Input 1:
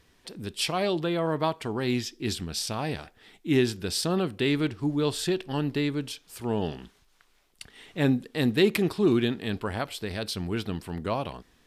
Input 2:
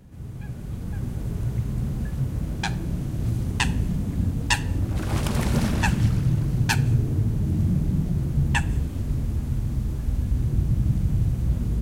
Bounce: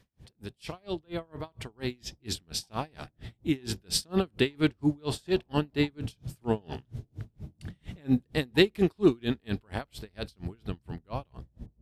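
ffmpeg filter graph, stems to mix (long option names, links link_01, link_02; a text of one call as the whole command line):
ffmpeg -i stem1.wav -i stem2.wav -filter_complex "[0:a]dynaudnorm=framelen=690:gausssize=7:maxgain=9dB,volume=-4dB[link_01];[1:a]lowpass=frequency=740:width_type=q:width=1.8,volume=-15dB[link_02];[link_01][link_02]amix=inputs=2:normalize=0,aeval=exprs='val(0)*pow(10,-35*(0.5-0.5*cos(2*PI*4.3*n/s))/20)':channel_layout=same" out.wav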